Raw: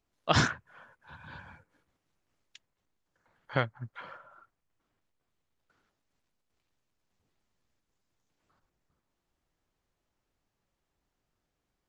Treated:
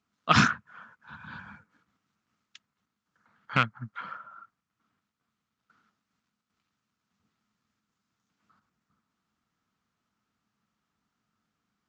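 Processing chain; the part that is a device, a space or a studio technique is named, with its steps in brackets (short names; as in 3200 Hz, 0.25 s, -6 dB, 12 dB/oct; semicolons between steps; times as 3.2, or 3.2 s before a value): car door speaker with a rattle (rattling part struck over -30 dBFS, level -18 dBFS; speaker cabinet 100–7400 Hz, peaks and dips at 210 Hz +10 dB, 370 Hz -7 dB, 560 Hz -9 dB, 810 Hz -3 dB, 1300 Hz +9 dB); gain +2 dB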